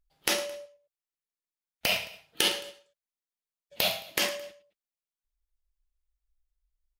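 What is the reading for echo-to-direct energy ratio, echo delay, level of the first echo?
-16.0 dB, 0.109 s, -17.0 dB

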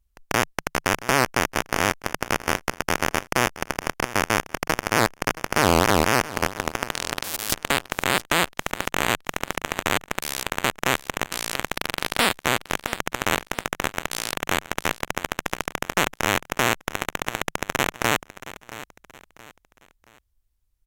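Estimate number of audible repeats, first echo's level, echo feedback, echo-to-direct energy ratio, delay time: 3, -16.0 dB, 36%, -15.5 dB, 0.674 s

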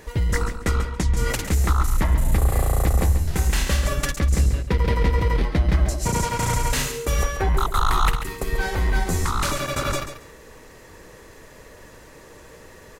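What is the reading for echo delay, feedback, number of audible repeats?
0.138 s, 19%, 2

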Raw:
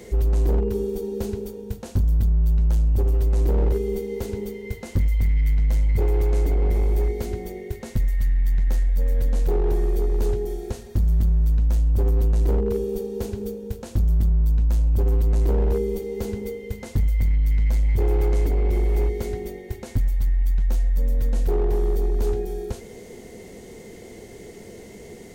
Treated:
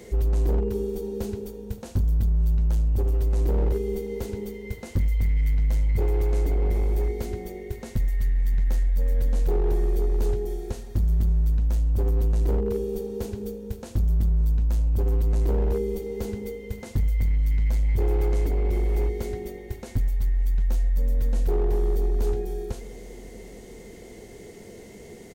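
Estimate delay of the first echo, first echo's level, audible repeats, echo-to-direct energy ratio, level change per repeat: 0.573 s, -22.5 dB, 3, -21.0 dB, -5.5 dB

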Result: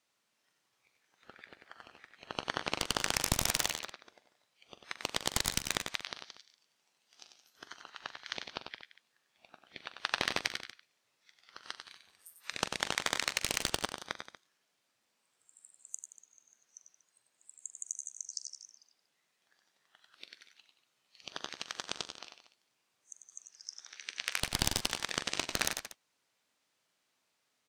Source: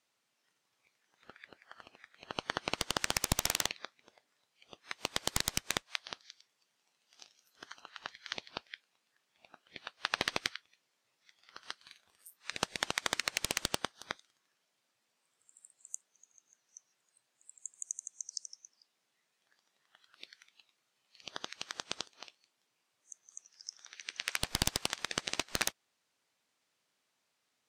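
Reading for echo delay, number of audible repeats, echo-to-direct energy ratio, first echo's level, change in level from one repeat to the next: 43 ms, 4, -5.0 dB, -13.5 dB, no steady repeat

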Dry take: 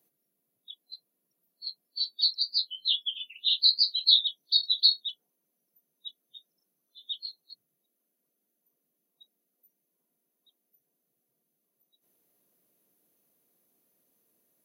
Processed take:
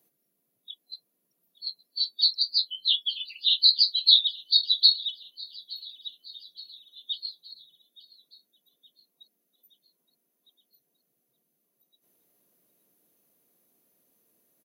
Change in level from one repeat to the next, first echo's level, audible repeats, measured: -5.0 dB, -21.0 dB, 3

